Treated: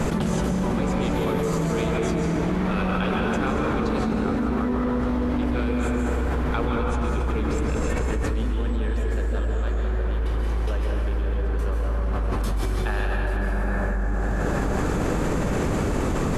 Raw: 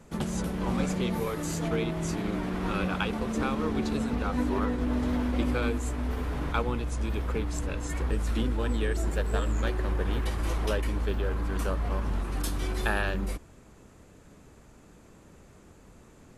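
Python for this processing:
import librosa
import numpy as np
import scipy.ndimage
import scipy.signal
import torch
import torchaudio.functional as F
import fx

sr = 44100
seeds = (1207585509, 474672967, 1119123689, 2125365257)

y = fx.high_shelf(x, sr, hz=5300.0, db=-7.0)
y = fx.rev_plate(y, sr, seeds[0], rt60_s=3.2, hf_ratio=0.4, predelay_ms=120, drr_db=-2.5)
y = fx.env_flatten(y, sr, amount_pct=100)
y = y * 10.0 ** (-6.5 / 20.0)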